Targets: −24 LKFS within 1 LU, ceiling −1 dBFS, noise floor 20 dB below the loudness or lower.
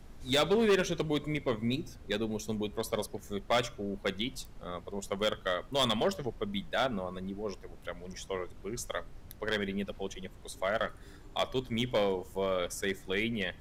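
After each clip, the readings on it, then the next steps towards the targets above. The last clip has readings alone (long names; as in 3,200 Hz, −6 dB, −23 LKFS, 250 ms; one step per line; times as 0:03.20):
share of clipped samples 0.8%; peaks flattened at −21.5 dBFS; background noise floor −51 dBFS; target noise floor −54 dBFS; integrated loudness −33.5 LKFS; sample peak −21.5 dBFS; target loudness −24.0 LKFS
→ clipped peaks rebuilt −21.5 dBFS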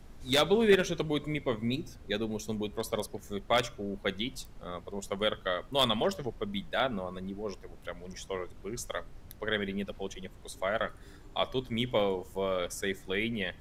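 share of clipped samples 0.0%; background noise floor −51 dBFS; target noise floor −52 dBFS
→ noise reduction from a noise print 6 dB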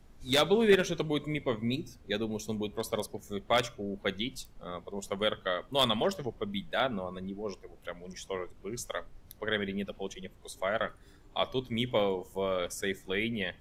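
background noise floor −56 dBFS; integrated loudness −32.5 LKFS; sample peak −12.5 dBFS; target loudness −24.0 LKFS
→ level +8.5 dB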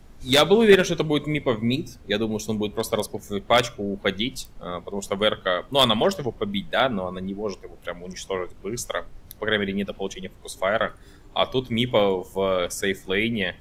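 integrated loudness −24.0 LKFS; sample peak −4.0 dBFS; background noise floor −48 dBFS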